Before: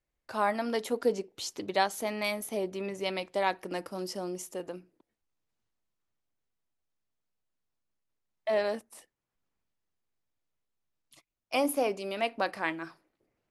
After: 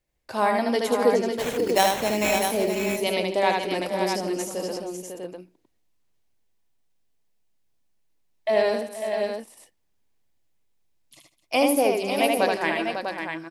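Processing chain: 1.3–2.41 sample-rate reducer 4800 Hz, jitter 0%; bell 1300 Hz -6.5 dB 0.52 oct; tapped delay 76/150/256/477/549/647 ms -3.5/-17/-17.5/-15/-7.5/-6.5 dB; gain +6.5 dB

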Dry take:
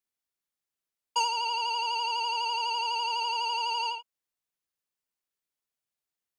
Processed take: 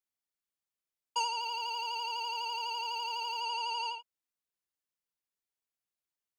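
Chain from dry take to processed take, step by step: 1.4–3.42 G.711 law mismatch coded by A; gain -5 dB

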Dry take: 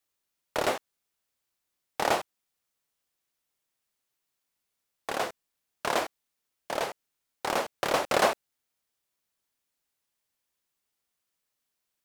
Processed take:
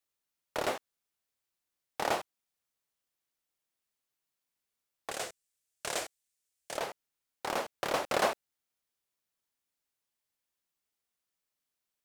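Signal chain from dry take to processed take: 5.11–6.78 graphic EQ 250/1000/8000 Hz -8/-8/+9 dB; gain -5 dB

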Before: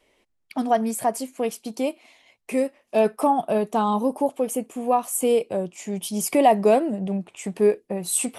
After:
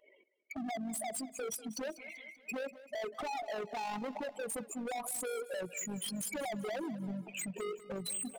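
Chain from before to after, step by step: spectral contrast raised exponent 3.4; HPF 1100 Hz 6 dB/oct; in parallel at +2 dB: compressor 4:1, threshold -41 dBFS, peak gain reduction 19 dB; on the sum: limiter -23 dBFS, peak gain reduction 10.5 dB; hard clip -37 dBFS, distortion -5 dB; AM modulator 48 Hz, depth 30%; feedback echo 0.193 s, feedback 51%, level -16.5 dB; gain +2 dB

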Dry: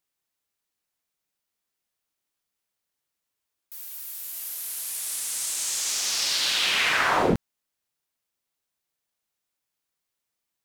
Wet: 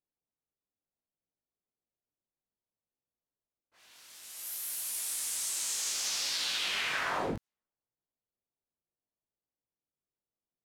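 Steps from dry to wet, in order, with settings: compressor 6:1, threshold -27 dBFS, peak gain reduction 10 dB; chorus 0.64 Hz, delay 16.5 ms, depth 4.6 ms; low-pass opened by the level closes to 610 Hz, open at -34 dBFS

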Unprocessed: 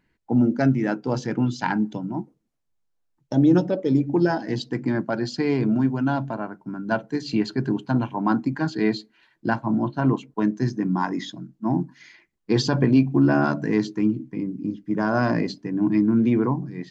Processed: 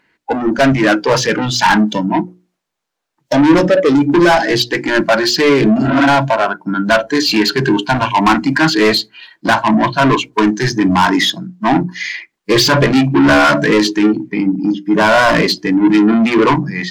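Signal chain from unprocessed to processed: spectral repair 5.81–6.03, 220–3900 Hz both; overdrive pedal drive 29 dB, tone 4400 Hz, clips at -6.5 dBFS; spectral noise reduction 12 dB; notches 60/120/180/240/300/360 Hz; gain +5 dB

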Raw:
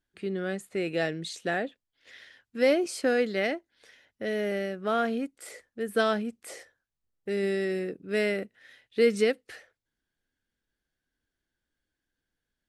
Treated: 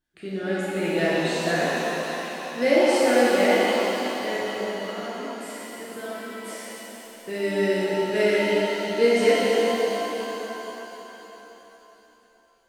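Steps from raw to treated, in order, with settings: 4.35–6.41 compressor 4:1, threshold -40 dBFS, peak gain reduction 16.5 dB; shimmer reverb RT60 3.7 s, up +7 st, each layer -8 dB, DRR -8.5 dB; gain -2 dB

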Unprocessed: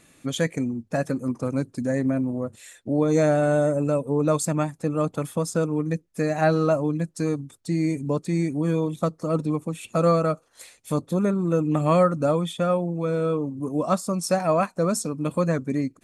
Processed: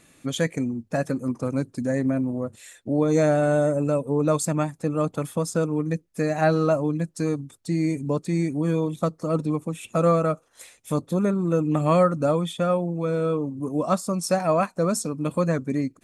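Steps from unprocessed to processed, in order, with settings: 9.68–10.95 notch 4400 Hz, Q 9.1

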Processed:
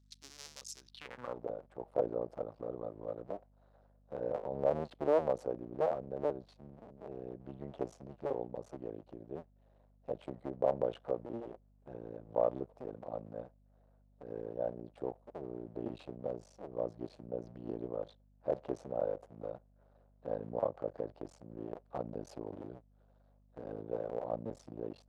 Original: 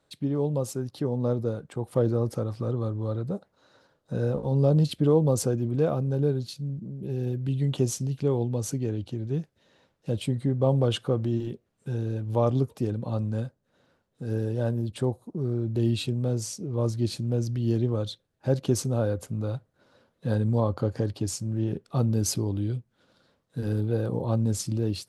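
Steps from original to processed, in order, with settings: cycle switcher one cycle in 2, muted; band-pass sweep 5600 Hz -> 640 Hz, 0.79–1.45; hum 50 Hz, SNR 27 dB

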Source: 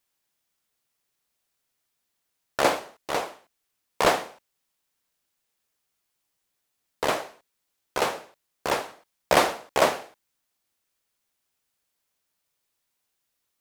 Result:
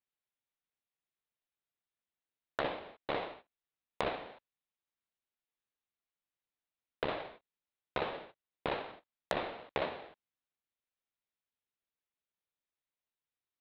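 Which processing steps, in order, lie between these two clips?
half-waves squared off; Chebyshev low-pass 3900 Hz, order 5; gate -43 dBFS, range -14 dB; compressor 16:1, threshold -26 dBFS, peak gain reduction 17 dB; gain -5.5 dB

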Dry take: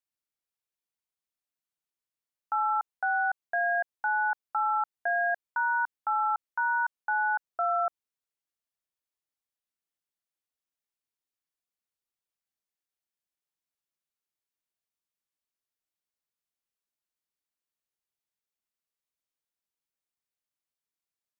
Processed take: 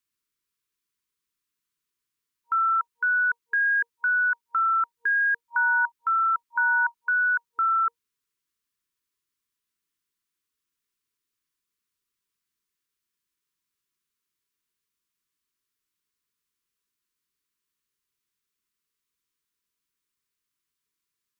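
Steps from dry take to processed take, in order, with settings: FFT band-reject 470–940 Hz; gain +7.5 dB

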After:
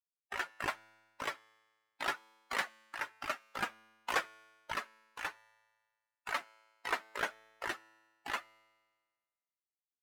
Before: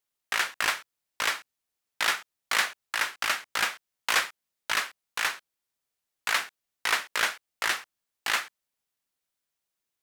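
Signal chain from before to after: per-bin expansion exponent 2; tilt shelf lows +8.5 dB, about 1500 Hz; resonator 110 Hz, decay 1.5 s, harmonics all, mix 40%

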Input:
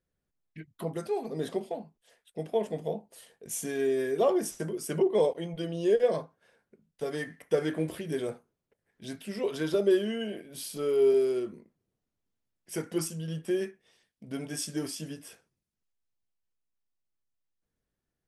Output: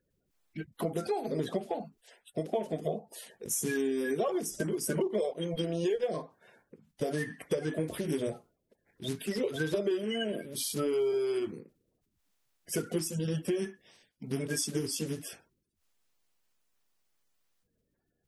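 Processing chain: bin magnitudes rounded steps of 30 dB; compressor 6:1, threshold -34 dBFS, peak gain reduction 14 dB; gain +6 dB

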